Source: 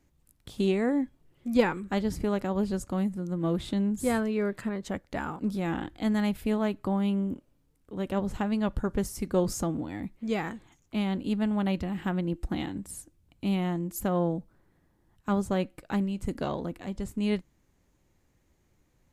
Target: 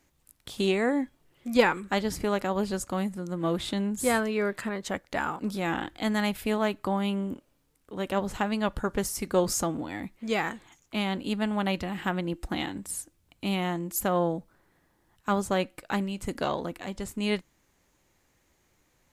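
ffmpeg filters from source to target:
-af "lowshelf=f=410:g=-11.5,volume=7dB"

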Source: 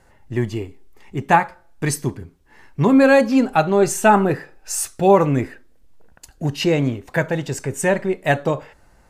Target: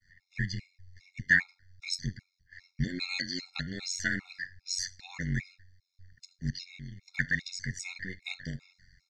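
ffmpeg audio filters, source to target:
-filter_complex "[0:a]agate=range=-33dB:threshold=-49dB:ratio=3:detection=peak,firequalizer=gain_entry='entry(120,0);entry(270,-19);entry(620,-30);entry(1200,-27);entry(1800,14);entry(2700,-9);entry(4400,15);entry(6300,5);entry(9100,-20);entry(14000,-24)':delay=0.05:min_phase=1,asettb=1/sr,asplit=3[a][b][c];[a]atrim=end=6.504[d];[b]atrim=start=6.5:end=7.08,asetpts=PTS-STARTPTS,afade=t=in:d=0.004:c=qsin,afade=t=out:st=0.576:d=0.004:c=qsin,acompressor=threshold=-33dB:ratio=6[e];[c]atrim=start=7.076[f];[d][e]acrossfade=d=0.004:c1=hsin:c2=qsin[g];[g][f]acrossfade=d=0.004:c1=qsin:c2=hsin,tremolo=f=91:d=0.947,afftfilt=real='re*gt(sin(2*PI*2.5*pts/sr)*(1-2*mod(floor(b*sr/1024/710),2)),0)':imag='im*gt(sin(2*PI*2.5*pts/sr)*(1-2*mod(floor(b*sr/1024/710),2)),0)':win_size=1024:overlap=0.75,volume=-2.5dB"

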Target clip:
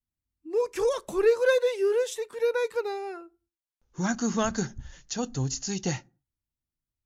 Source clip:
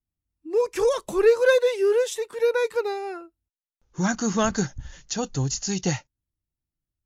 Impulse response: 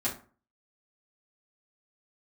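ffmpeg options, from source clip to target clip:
-filter_complex "[0:a]asplit=2[a][b];[b]equalizer=f=260:t=o:w=0.76:g=11[c];[1:a]atrim=start_sample=2205,afade=t=out:st=0.34:d=0.01,atrim=end_sample=15435[d];[c][d]afir=irnorm=-1:irlink=0,volume=-26.5dB[e];[a][e]amix=inputs=2:normalize=0,volume=-4.5dB"

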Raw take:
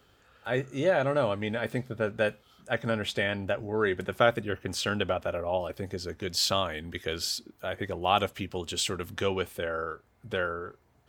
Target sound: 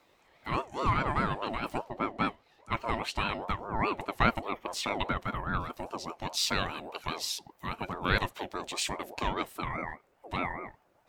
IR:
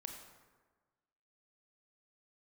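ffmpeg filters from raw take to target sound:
-filter_complex "[0:a]asettb=1/sr,asplit=3[a][b][c];[a]atrim=end=1.844[d];[b]atrim=start=1.84:end=2.72,asetpts=PTS-STARTPTS,afade=t=in:d=0.004:c=qsin,afade=t=out:st=0.876:d=0.004:c=qsin,highshelf=f=6.3k:g=-11.5[e];[c]atrim=start=2.716[f];[d][e]acrossfade=d=0.004:c1=hsin:c2=qsin[g];[g][f]acrossfade=d=0.004:c1=qsin:c2=hsin,aeval=exprs='val(0)*sin(2*PI*630*n/s+630*0.3/4.9*sin(2*PI*4.9*n/s))':c=same"

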